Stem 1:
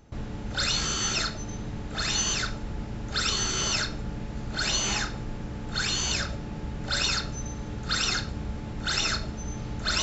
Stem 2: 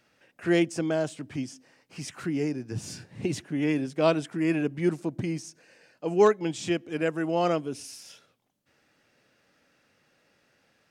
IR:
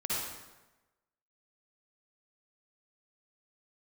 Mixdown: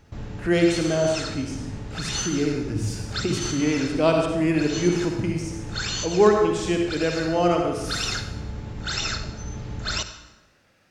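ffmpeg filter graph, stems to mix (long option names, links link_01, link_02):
-filter_complex "[0:a]volume=-2dB,asplit=2[link_01][link_02];[link_02]volume=-14.5dB[link_03];[1:a]volume=-1dB,asplit=3[link_04][link_05][link_06];[link_05]volume=-4dB[link_07];[link_06]apad=whole_len=442262[link_08];[link_01][link_08]sidechaincompress=threshold=-37dB:ratio=8:attack=5:release=167[link_09];[2:a]atrim=start_sample=2205[link_10];[link_03][link_07]amix=inputs=2:normalize=0[link_11];[link_11][link_10]afir=irnorm=-1:irlink=0[link_12];[link_09][link_04][link_12]amix=inputs=3:normalize=0,equalizer=frequency=95:width_type=o:width=0.38:gain=6"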